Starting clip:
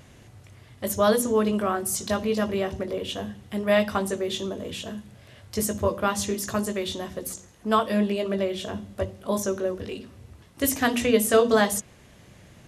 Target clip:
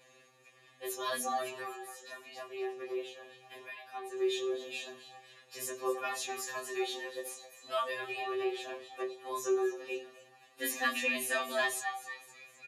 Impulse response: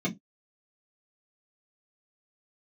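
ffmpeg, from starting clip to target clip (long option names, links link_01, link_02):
-filter_complex "[0:a]highpass=1100,aecho=1:1:5.9:0.65,asettb=1/sr,asplit=3[link_01][link_02][link_03];[link_01]atrim=end=1.614[link_04];[link_02]atrim=start=1.61:end=4.17,asetpts=PTS-STARTPTS,afade=type=in:duration=0.004:curve=qsin,afade=type=out:start_time=2.556:duration=0.004:curve=qsin,acompressor=threshold=-39dB:ratio=6[link_05];[link_03]atrim=start=4.166[link_06];[link_04][link_05]acrossfade=duration=0.004:curve1=hsin:curve2=qsin[link_07];[link_07][link_06]acrossfade=duration=0.004:curve1=qsin:curve2=hsin,asplit=5[link_08][link_09][link_10][link_11][link_12];[link_09]adelay=256,afreqshift=150,volume=-14dB[link_13];[link_10]adelay=512,afreqshift=300,volume=-20.7dB[link_14];[link_11]adelay=768,afreqshift=450,volume=-27.5dB[link_15];[link_12]adelay=1024,afreqshift=600,volume=-34.2dB[link_16];[link_08][link_13][link_14][link_15][link_16]amix=inputs=5:normalize=0[link_17];[1:a]atrim=start_sample=2205,asetrate=48510,aresample=44100[link_18];[link_17][link_18]afir=irnorm=-1:irlink=0,afftfilt=real='re*2.45*eq(mod(b,6),0)':imag='im*2.45*eq(mod(b,6),0)':win_size=2048:overlap=0.75,volume=-5dB"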